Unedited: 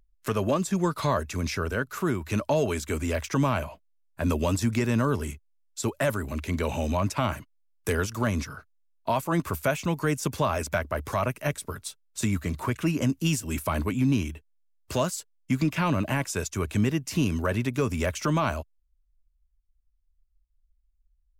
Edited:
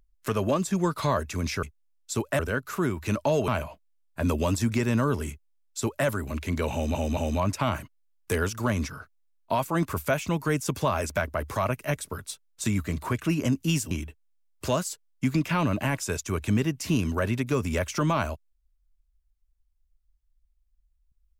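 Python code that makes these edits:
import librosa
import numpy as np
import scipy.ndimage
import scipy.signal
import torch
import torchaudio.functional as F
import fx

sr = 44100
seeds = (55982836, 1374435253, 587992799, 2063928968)

y = fx.edit(x, sr, fx.cut(start_s=2.72, length_s=0.77),
    fx.duplicate(start_s=5.31, length_s=0.76, to_s=1.63),
    fx.stutter(start_s=6.74, slice_s=0.22, count=3),
    fx.cut(start_s=13.48, length_s=0.7), tone=tone)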